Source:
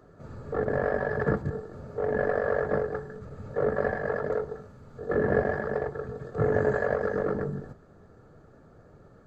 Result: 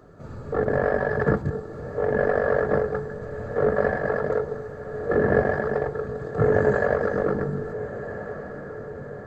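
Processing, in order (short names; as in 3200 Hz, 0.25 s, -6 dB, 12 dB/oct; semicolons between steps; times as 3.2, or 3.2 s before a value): diffused feedback echo 1.365 s, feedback 54%, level -12 dB; gain +4.5 dB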